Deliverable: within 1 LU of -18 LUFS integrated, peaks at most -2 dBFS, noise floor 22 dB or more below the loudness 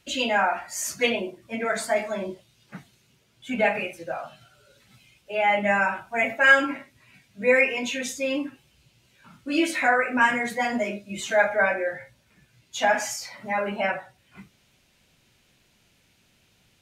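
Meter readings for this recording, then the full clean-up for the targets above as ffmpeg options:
loudness -24.0 LUFS; peak -5.0 dBFS; loudness target -18.0 LUFS
-> -af "volume=6dB,alimiter=limit=-2dB:level=0:latency=1"

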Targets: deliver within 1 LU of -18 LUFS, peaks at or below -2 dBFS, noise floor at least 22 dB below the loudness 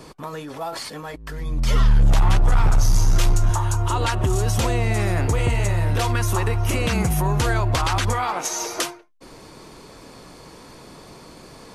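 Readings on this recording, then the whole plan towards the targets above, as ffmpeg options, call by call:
loudness -21.5 LUFS; peak -8.0 dBFS; loudness target -18.0 LUFS
-> -af "volume=3.5dB"

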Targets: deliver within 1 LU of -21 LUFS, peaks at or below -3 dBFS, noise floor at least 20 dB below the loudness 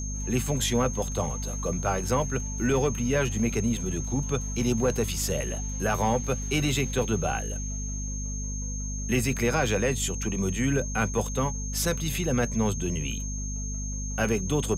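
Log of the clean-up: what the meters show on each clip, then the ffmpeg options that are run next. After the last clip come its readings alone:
hum 50 Hz; harmonics up to 250 Hz; hum level -30 dBFS; steady tone 6400 Hz; tone level -36 dBFS; loudness -27.5 LUFS; peak -13.5 dBFS; loudness target -21.0 LUFS
-> -af "bandreject=f=50:t=h:w=6,bandreject=f=100:t=h:w=6,bandreject=f=150:t=h:w=6,bandreject=f=200:t=h:w=6,bandreject=f=250:t=h:w=6"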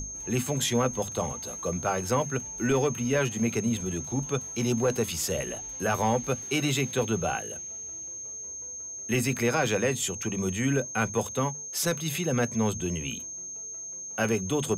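hum none; steady tone 6400 Hz; tone level -36 dBFS
-> -af "bandreject=f=6.4k:w=30"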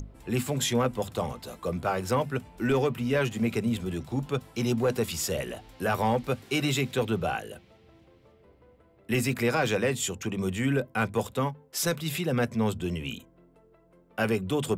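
steady tone none; loudness -29.0 LUFS; peak -14.5 dBFS; loudness target -21.0 LUFS
-> -af "volume=8dB"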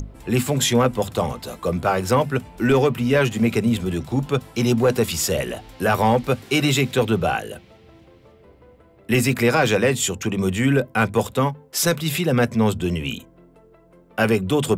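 loudness -21.0 LUFS; peak -6.5 dBFS; noise floor -52 dBFS

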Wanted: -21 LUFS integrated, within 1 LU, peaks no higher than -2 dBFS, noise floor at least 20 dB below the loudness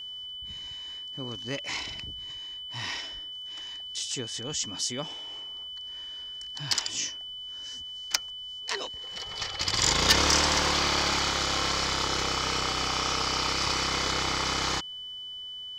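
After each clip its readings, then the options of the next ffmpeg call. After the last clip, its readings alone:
steady tone 3000 Hz; tone level -37 dBFS; loudness -28.5 LUFS; peak -10.5 dBFS; loudness target -21.0 LUFS
-> -af "bandreject=f=3k:w=30"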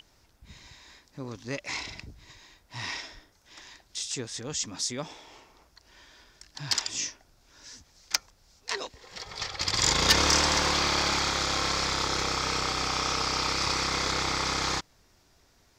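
steady tone none; loudness -27.0 LUFS; peak -9.5 dBFS; loudness target -21.0 LUFS
-> -af "volume=6dB"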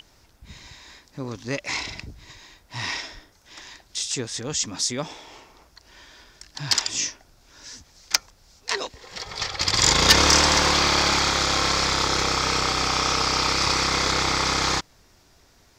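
loudness -21.0 LUFS; peak -3.5 dBFS; noise floor -58 dBFS

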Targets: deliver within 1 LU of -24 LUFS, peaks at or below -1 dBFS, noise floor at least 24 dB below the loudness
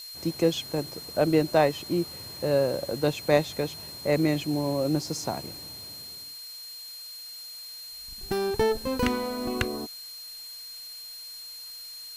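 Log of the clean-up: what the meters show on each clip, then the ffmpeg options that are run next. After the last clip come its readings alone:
steady tone 4200 Hz; tone level -40 dBFS; noise floor -42 dBFS; noise floor target -53 dBFS; loudness -29.0 LUFS; peak -8.0 dBFS; loudness target -24.0 LUFS
-> -af "bandreject=f=4.2k:w=30"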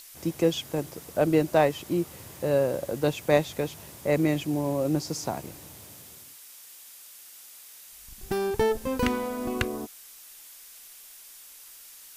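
steady tone none; noise floor -49 dBFS; noise floor target -52 dBFS
-> -af "afftdn=nr=6:nf=-49"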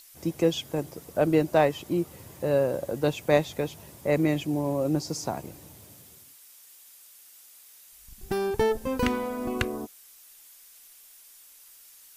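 noise floor -53 dBFS; loudness -27.5 LUFS; peak -8.0 dBFS; loudness target -24.0 LUFS
-> -af "volume=3.5dB"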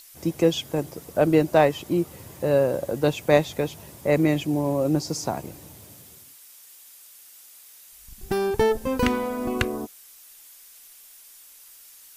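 loudness -24.0 LUFS; peak -4.5 dBFS; noise floor -49 dBFS

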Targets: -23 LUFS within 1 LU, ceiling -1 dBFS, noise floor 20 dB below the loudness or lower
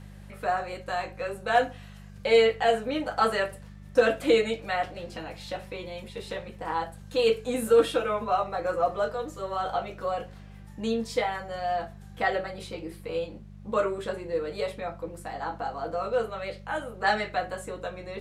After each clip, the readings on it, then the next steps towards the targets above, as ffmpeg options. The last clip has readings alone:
hum 50 Hz; harmonics up to 200 Hz; hum level -43 dBFS; loudness -28.5 LUFS; peak -10.5 dBFS; loudness target -23.0 LUFS
-> -af "bandreject=f=50:t=h:w=4,bandreject=f=100:t=h:w=4,bandreject=f=150:t=h:w=4,bandreject=f=200:t=h:w=4"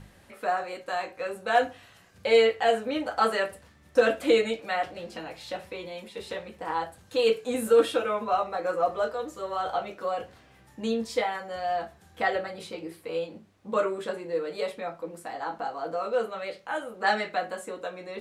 hum none; loudness -28.5 LUFS; peak -10.5 dBFS; loudness target -23.0 LUFS
-> -af "volume=5.5dB"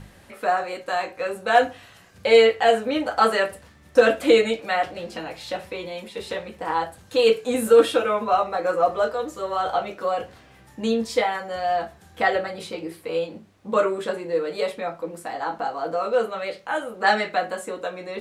loudness -23.0 LUFS; peak -5.0 dBFS; noise floor -51 dBFS

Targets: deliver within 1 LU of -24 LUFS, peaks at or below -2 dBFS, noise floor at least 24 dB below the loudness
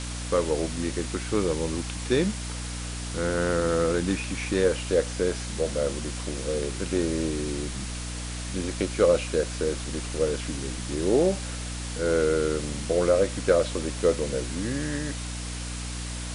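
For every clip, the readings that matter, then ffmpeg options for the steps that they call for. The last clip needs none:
hum 60 Hz; harmonics up to 300 Hz; hum level -32 dBFS; noise floor -34 dBFS; noise floor target -51 dBFS; loudness -27.0 LUFS; peak -8.5 dBFS; loudness target -24.0 LUFS
-> -af "bandreject=f=60:t=h:w=6,bandreject=f=120:t=h:w=6,bandreject=f=180:t=h:w=6,bandreject=f=240:t=h:w=6,bandreject=f=300:t=h:w=6"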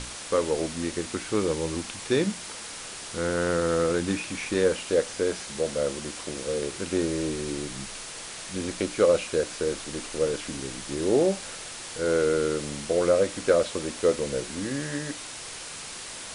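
hum none; noise floor -39 dBFS; noise floor target -52 dBFS
-> -af "afftdn=nr=13:nf=-39"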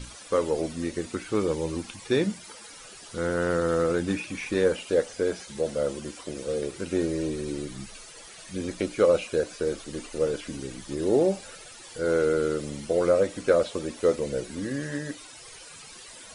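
noise floor -46 dBFS; noise floor target -52 dBFS
-> -af "afftdn=nr=6:nf=-46"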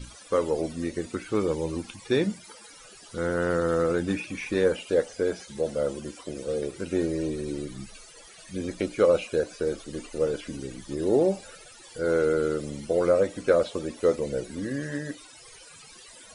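noise floor -49 dBFS; noise floor target -52 dBFS
-> -af "afftdn=nr=6:nf=-49"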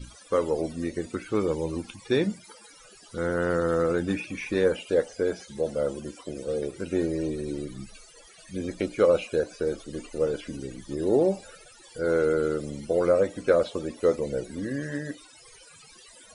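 noise floor -52 dBFS; loudness -27.5 LUFS; peak -9.0 dBFS; loudness target -24.0 LUFS
-> -af "volume=3.5dB"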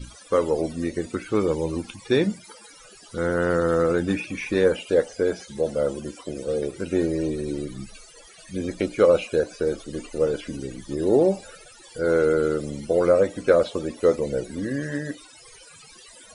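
loudness -24.0 LUFS; peak -5.5 dBFS; noise floor -48 dBFS

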